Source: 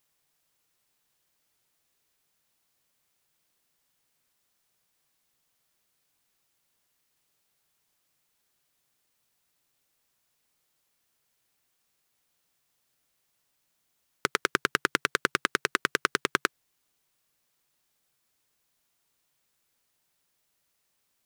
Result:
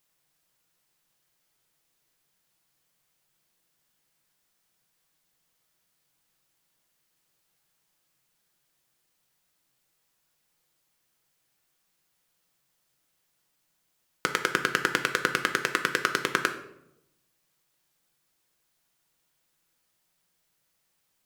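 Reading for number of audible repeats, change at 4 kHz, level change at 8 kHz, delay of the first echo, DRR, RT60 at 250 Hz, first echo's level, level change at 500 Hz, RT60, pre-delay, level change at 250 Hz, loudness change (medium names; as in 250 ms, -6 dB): no echo, +1.0 dB, +1.0 dB, no echo, 4.5 dB, 1.1 s, no echo, +1.5 dB, 0.85 s, 6 ms, +2.0 dB, +1.5 dB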